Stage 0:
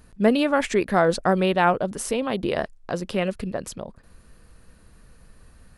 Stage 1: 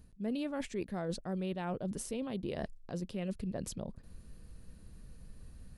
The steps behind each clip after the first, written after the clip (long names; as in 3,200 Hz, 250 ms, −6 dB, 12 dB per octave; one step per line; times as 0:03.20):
drawn EQ curve 180 Hz 0 dB, 1,300 Hz −13 dB, 3,900 Hz −6 dB
reversed playback
downward compressor 5 to 1, threshold −35 dBFS, peak gain reduction 16 dB
reversed playback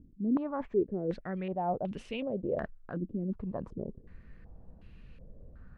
low-pass on a step sequencer 2.7 Hz 300–2,700 Hz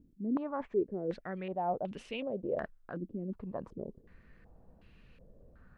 low-shelf EQ 220 Hz −9 dB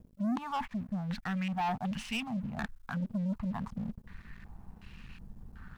elliptic band-stop filter 230–810 Hz
leveller curve on the samples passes 3